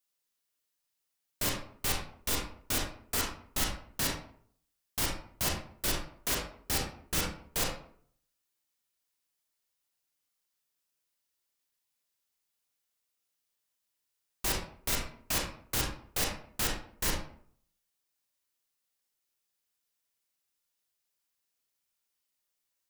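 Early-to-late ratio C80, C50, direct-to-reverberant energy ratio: 8.0 dB, 3.0 dB, −1.0 dB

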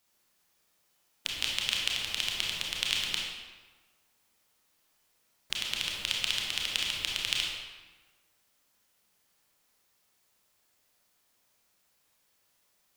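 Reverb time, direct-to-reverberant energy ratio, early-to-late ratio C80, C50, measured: 1.3 s, −2.5 dB, 2.5 dB, 0.0 dB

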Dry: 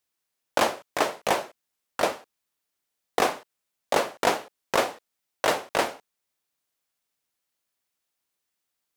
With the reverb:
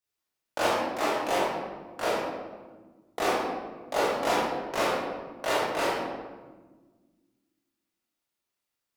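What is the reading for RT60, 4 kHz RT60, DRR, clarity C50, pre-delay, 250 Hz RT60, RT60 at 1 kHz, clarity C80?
1.4 s, 0.85 s, −10.0 dB, −2.0 dB, 21 ms, 2.3 s, 1.2 s, 1.0 dB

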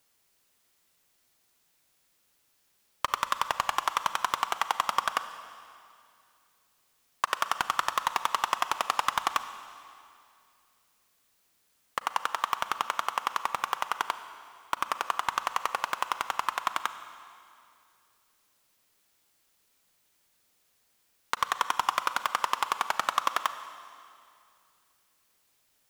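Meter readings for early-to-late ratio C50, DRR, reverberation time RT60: 11.5 dB, 11.0 dB, 2.4 s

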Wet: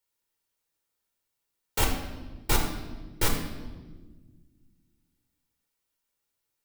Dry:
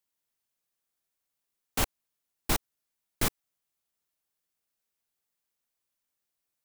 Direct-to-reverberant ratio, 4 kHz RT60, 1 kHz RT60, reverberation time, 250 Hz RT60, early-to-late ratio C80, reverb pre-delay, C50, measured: 1.0 dB, 1.0 s, 1.1 s, 1.4 s, 2.5 s, 7.0 dB, 8 ms, 5.0 dB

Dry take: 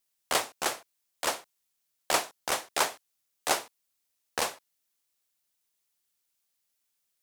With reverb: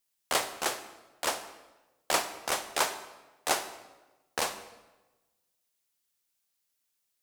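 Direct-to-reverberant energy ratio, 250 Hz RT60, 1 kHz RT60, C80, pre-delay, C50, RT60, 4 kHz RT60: 10.0 dB, 1.3 s, 1.1 s, 13.0 dB, 26 ms, 11.5 dB, 1.1 s, 0.90 s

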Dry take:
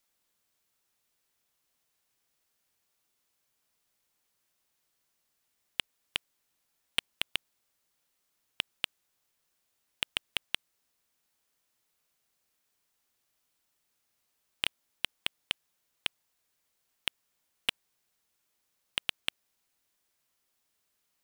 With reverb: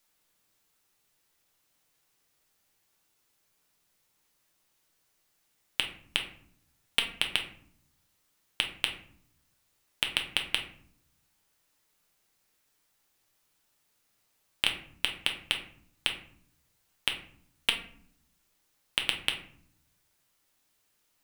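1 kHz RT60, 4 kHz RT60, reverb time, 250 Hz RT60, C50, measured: 0.55 s, 0.35 s, 0.60 s, 1.1 s, 9.0 dB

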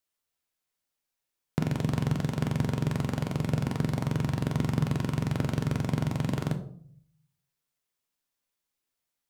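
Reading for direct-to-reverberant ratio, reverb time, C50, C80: 6.0 dB, 0.60 s, 12.0 dB, 15.5 dB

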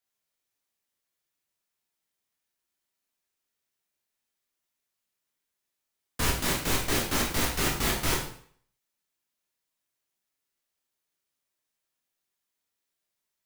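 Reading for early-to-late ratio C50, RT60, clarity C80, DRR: 5.0 dB, 0.55 s, 8.5 dB, −2.0 dB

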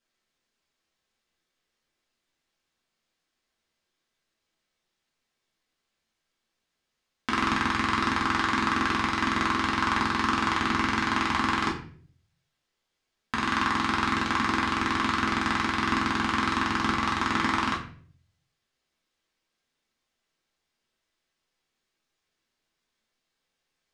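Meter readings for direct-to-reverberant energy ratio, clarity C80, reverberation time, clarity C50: −4.0 dB, 11.0 dB, 0.50 s, 7.5 dB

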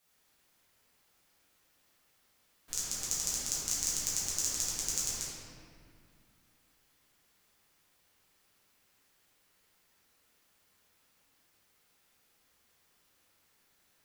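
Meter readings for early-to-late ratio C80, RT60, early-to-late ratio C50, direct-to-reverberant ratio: −0.5 dB, 2.2 s, −2.5 dB, −10.0 dB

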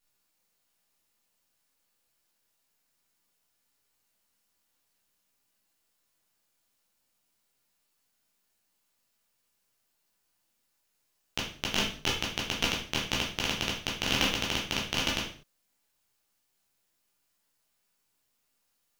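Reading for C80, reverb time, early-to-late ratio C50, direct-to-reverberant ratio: 10.0 dB, non-exponential decay, 5.0 dB, −4.5 dB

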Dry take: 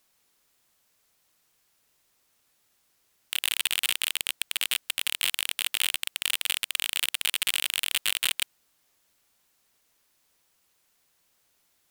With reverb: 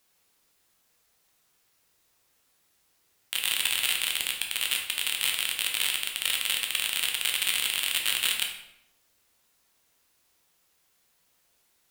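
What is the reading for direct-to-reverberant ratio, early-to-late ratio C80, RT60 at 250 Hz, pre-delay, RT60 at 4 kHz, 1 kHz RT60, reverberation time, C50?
1.0 dB, 9.0 dB, 1.0 s, 8 ms, 0.60 s, 0.75 s, 0.80 s, 5.5 dB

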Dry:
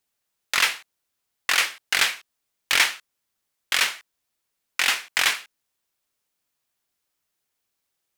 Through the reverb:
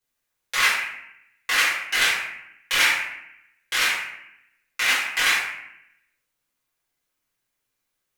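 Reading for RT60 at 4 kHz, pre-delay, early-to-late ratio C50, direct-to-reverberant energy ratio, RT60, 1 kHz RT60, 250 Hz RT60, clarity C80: 0.60 s, 4 ms, 2.0 dB, −10.5 dB, 0.75 s, 0.75 s, 1.0 s, 5.0 dB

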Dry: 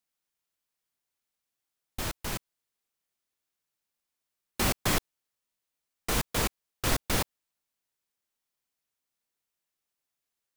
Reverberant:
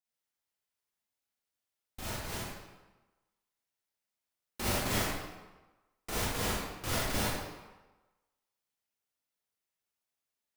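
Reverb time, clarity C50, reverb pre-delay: 1.2 s, −3.5 dB, 35 ms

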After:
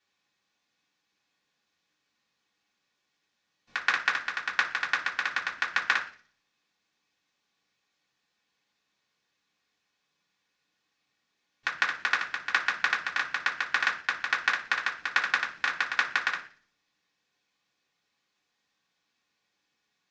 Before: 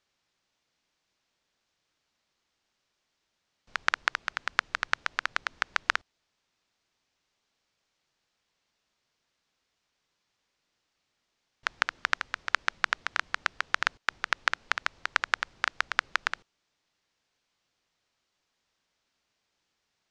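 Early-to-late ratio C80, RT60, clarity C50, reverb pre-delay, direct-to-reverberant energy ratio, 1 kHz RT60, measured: 16.0 dB, 0.45 s, 11.5 dB, 3 ms, −5.0 dB, 0.40 s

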